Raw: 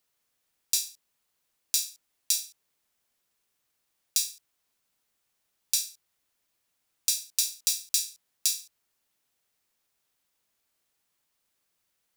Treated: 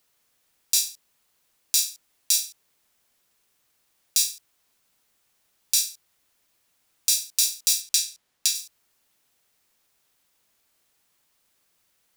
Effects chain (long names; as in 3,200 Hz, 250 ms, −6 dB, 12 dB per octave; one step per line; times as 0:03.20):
0:07.80–0:08.54: high-shelf EQ 11,000 Hz → 5,700 Hz −8.5 dB
brickwall limiter −9.5 dBFS, peak gain reduction 6 dB
level +8 dB